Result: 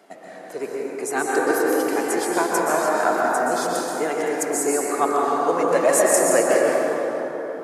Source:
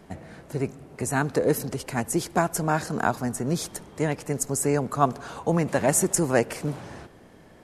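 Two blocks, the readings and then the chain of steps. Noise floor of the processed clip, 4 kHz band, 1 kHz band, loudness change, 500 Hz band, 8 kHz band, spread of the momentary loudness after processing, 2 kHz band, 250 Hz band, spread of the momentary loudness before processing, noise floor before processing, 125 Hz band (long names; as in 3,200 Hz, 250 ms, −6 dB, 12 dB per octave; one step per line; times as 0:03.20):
−39 dBFS, +4.0 dB, +7.0 dB, +5.0 dB, +7.5 dB, +4.0 dB, 11 LU, +7.0 dB, +1.5 dB, 11 LU, −51 dBFS, −15.0 dB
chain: high-pass filter 280 Hz 24 dB per octave
flanger 0.33 Hz, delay 1.4 ms, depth 1.5 ms, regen +44%
dense smooth reverb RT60 4.2 s, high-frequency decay 0.3×, pre-delay 110 ms, DRR −4.5 dB
level +4.5 dB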